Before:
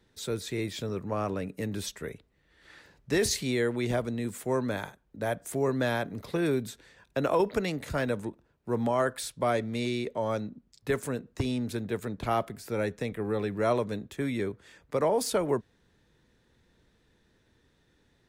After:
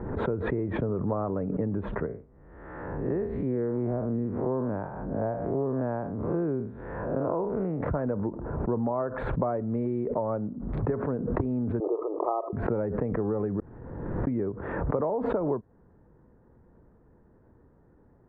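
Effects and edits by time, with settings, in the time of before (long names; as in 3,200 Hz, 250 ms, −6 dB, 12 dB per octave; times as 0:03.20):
0:02.06–0:07.81: spectrum smeared in time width 128 ms
0:11.80–0:12.53: linear-phase brick-wall band-pass 310–1,300 Hz
0:13.60–0:14.27: fill with room tone
whole clip: downward compressor, threshold −34 dBFS; inverse Chebyshev low-pass filter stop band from 5,000 Hz, stop band 70 dB; background raised ahead of every attack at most 37 dB per second; level +8.5 dB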